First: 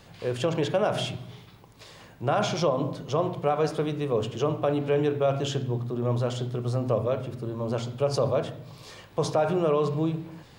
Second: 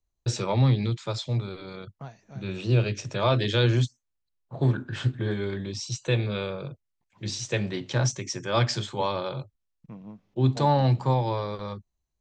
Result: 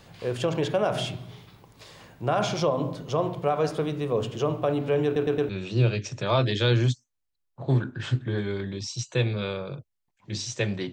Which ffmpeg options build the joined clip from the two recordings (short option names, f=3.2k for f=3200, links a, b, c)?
-filter_complex "[0:a]apad=whole_dur=10.92,atrim=end=10.92,asplit=4[a][b][c][d];[a]atrim=end=5.162[e];[b]atrim=start=5.048:end=5.162[f];[c]atrim=start=5.048:end=5.162[g];[d]atrim=start=5.048:end=5.162[h];[1:a]atrim=start=2.418:end=7.85[i];[e][f]acrossfade=d=0.004:c1=hsin:c2=hsin[j];[j][g]acrossfade=d=0.004:c1=hsin:c2=hsin[k];[k][h]acrossfade=d=0.004:c1=hsin:c2=hsin[l];[l][i]acrossfade=d=0.004:c1=hsin:c2=hsin"